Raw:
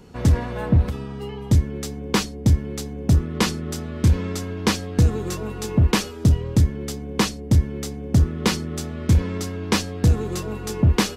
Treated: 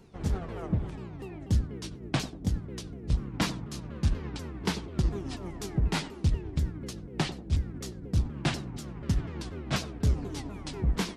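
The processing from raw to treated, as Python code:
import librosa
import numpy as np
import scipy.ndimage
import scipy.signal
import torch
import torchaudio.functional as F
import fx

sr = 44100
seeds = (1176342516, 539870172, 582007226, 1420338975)

y = fx.pitch_ramps(x, sr, semitones=-8.0, every_ms=244)
y = fx.echo_banded(y, sr, ms=94, feedback_pct=46, hz=380.0, wet_db=-9.5)
y = y * librosa.db_to_amplitude(-8.0)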